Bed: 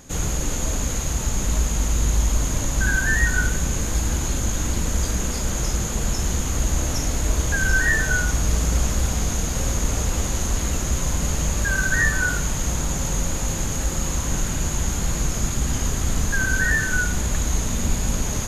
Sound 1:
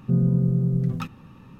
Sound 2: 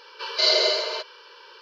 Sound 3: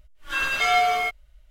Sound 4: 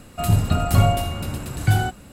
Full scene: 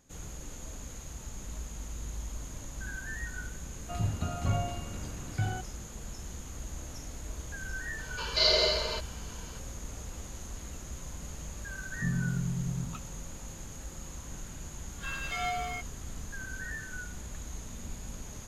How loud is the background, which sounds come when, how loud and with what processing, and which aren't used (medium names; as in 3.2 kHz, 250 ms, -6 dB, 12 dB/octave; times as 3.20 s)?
bed -19 dB
3.71 s: add 4 -13.5 dB + low-pass 3.7 kHz
7.98 s: add 2 -5 dB
11.93 s: add 1 -10 dB + static phaser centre 1.9 kHz, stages 6
14.71 s: add 3 -13.5 dB